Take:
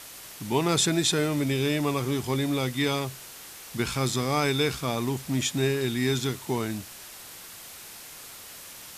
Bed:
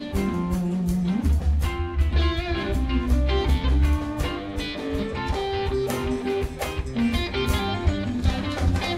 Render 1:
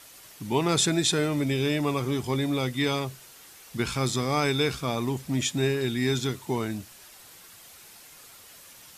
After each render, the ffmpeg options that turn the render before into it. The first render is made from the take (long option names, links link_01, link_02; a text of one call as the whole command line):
ffmpeg -i in.wav -af "afftdn=noise_reduction=7:noise_floor=-44" out.wav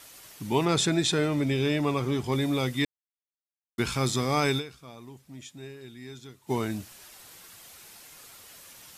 ffmpeg -i in.wav -filter_complex "[0:a]asettb=1/sr,asplit=3[link_01][link_02][link_03];[link_01]atrim=end=0.654[link_04];[link_02]atrim=start=0.65:end=2.32,asetpts=PTS-STARTPTS,afade=type=in:duration=0.004:curve=qsin,afade=type=out:start_time=1.666:duration=0.004:curve=qsin,highshelf=frequency=7300:gain=-9[link_05];[link_03]atrim=start=2.316[link_06];[link_04][link_05]acrossfade=duration=0.004:curve1=hsin:curve2=qsin[link_07];[link_07][link_06]acrossfade=duration=0.004:curve1=qsin:curve2=hsin,asplit=5[link_08][link_09][link_10][link_11][link_12];[link_08]atrim=end=2.85,asetpts=PTS-STARTPTS,afade=type=out:start_time=2.846:duration=0.004:curve=hsin[link_13];[link_09]atrim=start=2.85:end=3.78,asetpts=PTS-STARTPTS,volume=0[link_14];[link_10]atrim=start=3.78:end=4.79,asetpts=PTS-STARTPTS,afade=type=in:duration=0.004:curve=hsin,afade=type=out:start_time=0.8:duration=0.21:curve=exp:silence=0.133352[link_15];[link_11]atrim=start=4.79:end=6.3,asetpts=PTS-STARTPTS,volume=-17.5dB[link_16];[link_12]atrim=start=6.3,asetpts=PTS-STARTPTS,afade=type=in:duration=0.21:curve=exp:silence=0.133352[link_17];[link_13][link_14][link_15][link_16][link_17]concat=n=5:v=0:a=1" out.wav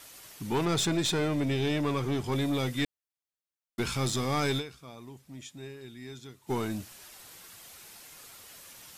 ffmpeg -i in.wav -af "aeval=exprs='(tanh(12.6*val(0)+0.25)-tanh(0.25))/12.6':channel_layout=same" out.wav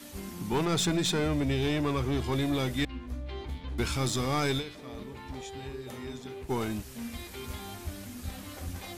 ffmpeg -i in.wav -i bed.wav -filter_complex "[1:a]volume=-16.5dB[link_01];[0:a][link_01]amix=inputs=2:normalize=0" out.wav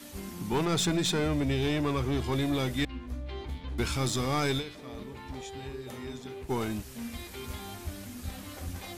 ffmpeg -i in.wav -af anull out.wav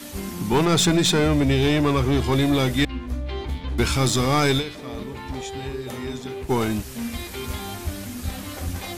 ffmpeg -i in.wav -af "volume=9dB" out.wav